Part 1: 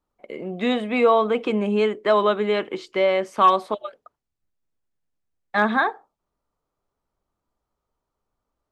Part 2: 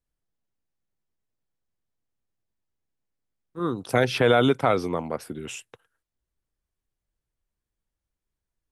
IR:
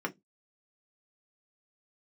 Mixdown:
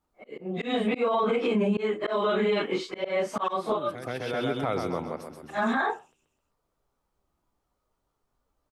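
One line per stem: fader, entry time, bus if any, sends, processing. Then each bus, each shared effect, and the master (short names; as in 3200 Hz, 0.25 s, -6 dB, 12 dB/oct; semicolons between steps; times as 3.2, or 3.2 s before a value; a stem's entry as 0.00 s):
+2.5 dB, 0.00 s, no send, no echo send, phase scrambler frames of 0.1 s; auto swell 0.241 s
-3.5 dB, 0.00 s, no send, echo send -10 dB, auto duck -17 dB, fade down 0.40 s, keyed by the first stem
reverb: off
echo: feedback echo 0.13 s, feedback 48%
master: limiter -17.5 dBFS, peak gain reduction 13 dB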